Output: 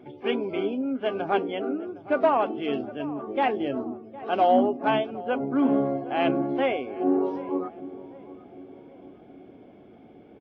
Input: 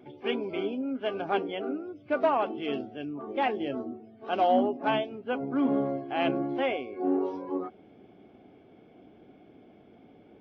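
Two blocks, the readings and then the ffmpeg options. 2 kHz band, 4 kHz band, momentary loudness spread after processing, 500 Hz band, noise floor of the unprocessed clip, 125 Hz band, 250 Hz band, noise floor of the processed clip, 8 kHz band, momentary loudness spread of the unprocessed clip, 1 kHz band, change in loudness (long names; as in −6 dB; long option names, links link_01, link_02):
+2.5 dB, +1.0 dB, 17 LU, +4.0 dB, −56 dBFS, +4.0 dB, +4.0 dB, −50 dBFS, can't be measured, 10 LU, +4.0 dB, +4.0 dB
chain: -filter_complex "[0:a]highshelf=frequency=3500:gain=-6.5,asplit=2[link_01][link_02];[link_02]adelay=761,lowpass=frequency=1200:poles=1,volume=-16.5dB,asplit=2[link_03][link_04];[link_04]adelay=761,lowpass=frequency=1200:poles=1,volume=0.52,asplit=2[link_05][link_06];[link_06]adelay=761,lowpass=frequency=1200:poles=1,volume=0.52,asplit=2[link_07][link_08];[link_08]adelay=761,lowpass=frequency=1200:poles=1,volume=0.52,asplit=2[link_09][link_10];[link_10]adelay=761,lowpass=frequency=1200:poles=1,volume=0.52[link_11];[link_01][link_03][link_05][link_07][link_09][link_11]amix=inputs=6:normalize=0,volume=4dB"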